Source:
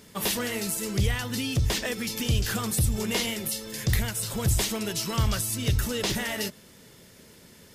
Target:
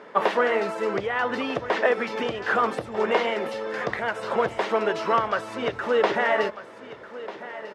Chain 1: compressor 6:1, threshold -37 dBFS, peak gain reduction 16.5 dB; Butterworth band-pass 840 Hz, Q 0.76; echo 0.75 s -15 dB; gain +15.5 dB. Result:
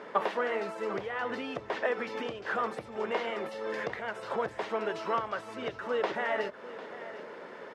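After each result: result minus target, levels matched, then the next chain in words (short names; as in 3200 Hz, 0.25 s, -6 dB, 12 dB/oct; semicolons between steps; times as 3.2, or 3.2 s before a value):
compressor: peak gain reduction +9.5 dB; echo 0.495 s early
compressor 6:1, threshold -25.5 dBFS, peak gain reduction 6.5 dB; Butterworth band-pass 840 Hz, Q 0.76; echo 0.75 s -15 dB; gain +15.5 dB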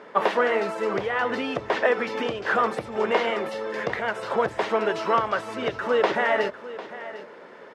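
echo 0.495 s early
compressor 6:1, threshold -25.5 dBFS, peak gain reduction 6.5 dB; Butterworth band-pass 840 Hz, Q 0.76; echo 1.245 s -15 dB; gain +15.5 dB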